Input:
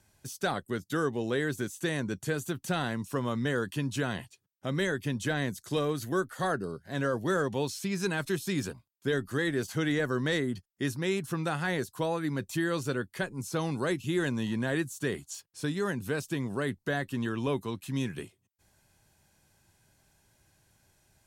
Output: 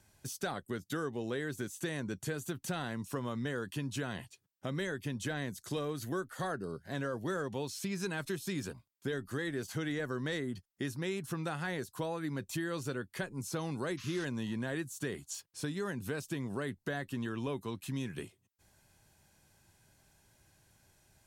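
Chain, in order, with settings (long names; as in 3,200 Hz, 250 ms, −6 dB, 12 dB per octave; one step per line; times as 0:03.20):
downward compressor 2.5 to 1, threshold −36 dBFS, peak gain reduction 8.5 dB
sound drawn into the spectrogram noise, 0:13.97–0:14.25, 980–6,700 Hz −51 dBFS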